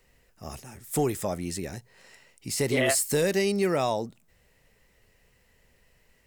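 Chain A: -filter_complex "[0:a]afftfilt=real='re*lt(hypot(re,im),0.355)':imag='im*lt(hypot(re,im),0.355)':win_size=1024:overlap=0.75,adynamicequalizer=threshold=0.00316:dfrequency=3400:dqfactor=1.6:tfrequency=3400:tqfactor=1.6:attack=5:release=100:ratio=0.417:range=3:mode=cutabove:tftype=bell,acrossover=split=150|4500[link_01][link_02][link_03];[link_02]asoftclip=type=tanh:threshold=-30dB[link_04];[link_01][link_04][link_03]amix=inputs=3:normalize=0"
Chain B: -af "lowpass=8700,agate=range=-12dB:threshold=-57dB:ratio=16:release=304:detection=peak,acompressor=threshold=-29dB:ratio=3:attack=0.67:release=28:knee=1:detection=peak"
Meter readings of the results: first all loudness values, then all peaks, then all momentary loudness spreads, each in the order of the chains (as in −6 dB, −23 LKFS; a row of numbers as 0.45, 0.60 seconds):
−32.0, −33.0 LKFS; −14.5, −21.5 dBFS; 17, 14 LU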